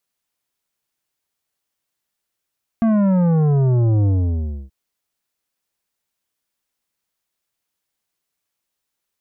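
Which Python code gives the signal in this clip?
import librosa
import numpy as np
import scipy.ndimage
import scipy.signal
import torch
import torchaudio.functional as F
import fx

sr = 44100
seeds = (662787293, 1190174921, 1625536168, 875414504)

y = fx.sub_drop(sr, level_db=-14.0, start_hz=230.0, length_s=1.88, drive_db=10.5, fade_s=0.64, end_hz=65.0)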